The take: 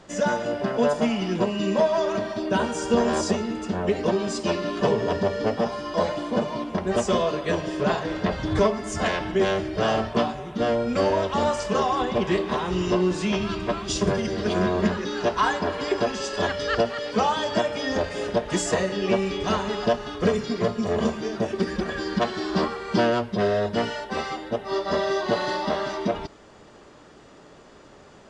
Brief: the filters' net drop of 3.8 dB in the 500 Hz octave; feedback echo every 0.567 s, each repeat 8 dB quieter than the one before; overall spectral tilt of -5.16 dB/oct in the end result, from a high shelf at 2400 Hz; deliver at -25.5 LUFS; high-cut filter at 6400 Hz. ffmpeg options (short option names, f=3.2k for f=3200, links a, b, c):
-af "lowpass=6.4k,equalizer=f=500:t=o:g=-4.5,highshelf=f=2.4k:g=-7.5,aecho=1:1:567|1134|1701|2268|2835:0.398|0.159|0.0637|0.0255|0.0102,volume=1.5dB"